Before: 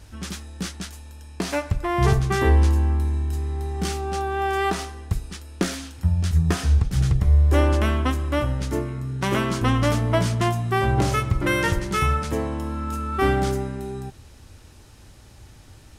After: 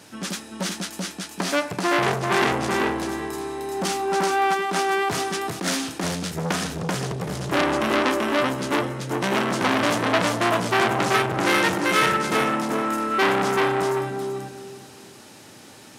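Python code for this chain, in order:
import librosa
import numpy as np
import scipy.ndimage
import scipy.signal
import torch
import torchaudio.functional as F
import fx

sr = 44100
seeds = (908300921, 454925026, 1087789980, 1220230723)

p1 = scipy.signal.sosfilt(scipy.signal.butter(4, 170.0, 'highpass', fs=sr, output='sos'), x)
p2 = p1 + fx.echo_feedback(p1, sr, ms=385, feedback_pct=25, wet_db=-3, dry=0)
p3 = fx.over_compress(p2, sr, threshold_db=-28.0, ratio=-1.0, at=(4.53, 6.14), fade=0.02)
p4 = fx.transformer_sat(p3, sr, knee_hz=2700.0)
y = F.gain(torch.from_numpy(p4), 6.0).numpy()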